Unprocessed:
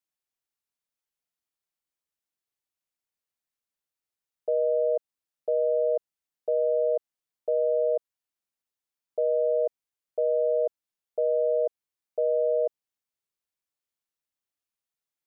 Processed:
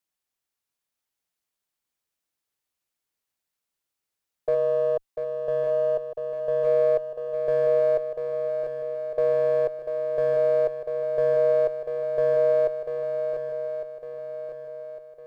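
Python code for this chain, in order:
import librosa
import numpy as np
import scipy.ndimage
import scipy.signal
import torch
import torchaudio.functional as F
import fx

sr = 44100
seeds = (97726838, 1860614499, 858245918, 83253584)

p1 = fx.highpass(x, sr, hz=fx.line((4.54, 410.0), (6.63, 540.0)), slope=6, at=(4.54, 6.63), fade=0.02)
p2 = fx.clip_asym(p1, sr, top_db=-29.0, bottom_db=-20.5)
p3 = p1 + F.gain(torch.from_numpy(p2), -4.5).numpy()
y = fx.echo_swing(p3, sr, ms=1155, ratio=1.5, feedback_pct=43, wet_db=-7.0)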